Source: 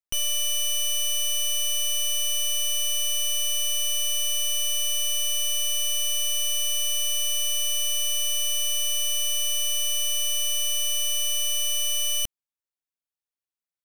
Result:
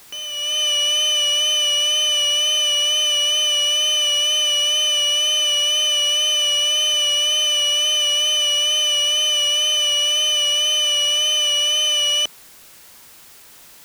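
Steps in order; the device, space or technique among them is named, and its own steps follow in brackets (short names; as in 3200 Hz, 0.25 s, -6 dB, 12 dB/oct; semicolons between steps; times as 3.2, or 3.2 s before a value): dictaphone (BPF 390–3800 Hz; AGC gain up to 13 dB; wow and flutter 31 cents; white noise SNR 26 dB)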